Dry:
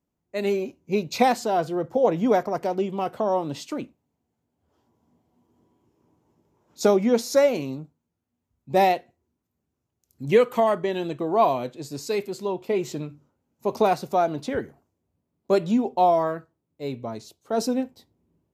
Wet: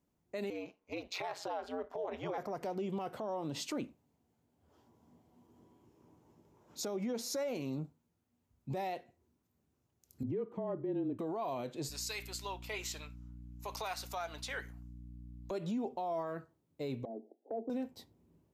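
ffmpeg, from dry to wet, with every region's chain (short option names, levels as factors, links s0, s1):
-filter_complex "[0:a]asettb=1/sr,asplit=3[s0][s1][s2];[s0]atrim=end=0.504[s3];[s1]atrim=start=0.5:end=2.38,asetpts=PTS-STARTPTS,afade=t=in:d=0.004:c=qsin,afade=t=out:st=1.876:d=0.004:c=qsin,acrossover=split=440 4200:gain=0.0631 1 0.224[s4][s5][s6];[s4][s5][s6]amix=inputs=3:normalize=0,acompressor=threshold=0.0562:ratio=2.5:attack=3.2:release=140:knee=1:detection=peak,aeval=exprs='val(0)*sin(2*PI*91*n/s)':c=same[s7];[s2]atrim=start=2.376[s8];[s3][s7]acrossfade=d=0.004:c1=hsin:c2=qsin[s9];[s9][s8]acrossfade=d=0.004:c1=qsin:c2=hsin,asettb=1/sr,asplit=3[s10][s11][s12];[s10]atrim=end=10.234[s13];[s11]atrim=start=10.23:end=11.19,asetpts=PTS-STARTPTS,afade=t=in:d=0.004:c=qsin,afade=t=out:st=0.956:d=0.004:c=qsin,bandpass=f=300:t=q:w=1.9,afreqshift=-28[s14];[s12]atrim=start=11.186[s15];[s13][s14]acrossfade=d=0.004:c1=hsin:c2=qsin[s16];[s16][s15]acrossfade=d=0.004:c1=qsin:c2=hsin,asettb=1/sr,asplit=3[s17][s18][s19];[s17]atrim=end=11.894[s20];[s18]atrim=start=11.89:end=15.51,asetpts=PTS-STARTPTS,afade=t=in:d=0.004:c=qsin,afade=t=out:st=3.616:d=0.004:c=qsin,highpass=1400,aeval=exprs='val(0)+0.00355*(sin(2*PI*60*n/s)+sin(2*PI*2*60*n/s)/2+sin(2*PI*3*60*n/s)/3+sin(2*PI*4*60*n/s)/4+sin(2*PI*5*60*n/s)/5)':c=same[s21];[s19]atrim=start=15.506[s22];[s20][s21]acrossfade=d=0.004:c1=hsin:c2=qsin[s23];[s23][s22]acrossfade=d=0.004:c1=qsin:c2=hsin,asettb=1/sr,asplit=3[s24][s25][s26];[s24]atrim=end=17.054[s27];[s25]atrim=start=17.05:end=17.7,asetpts=PTS-STARTPTS,afade=t=in:d=0.004:c=qsin,afade=t=out:st=0.646:d=0.004:c=qsin,asuperpass=centerf=430:order=20:qfactor=0.72,acompressor=threshold=0.00708:ratio=2.5:attack=3.2:release=140:knee=1:detection=peak[s28];[s26]atrim=start=17.696[s29];[s27][s28]acrossfade=d=0.004:c1=hsin:c2=qsin[s30];[s30][s29]acrossfade=d=0.004:c1=qsin:c2=hsin,acompressor=threshold=0.02:ratio=2.5,alimiter=level_in=2.24:limit=0.0631:level=0:latency=1:release=54,volume=0.447,volume=1.12"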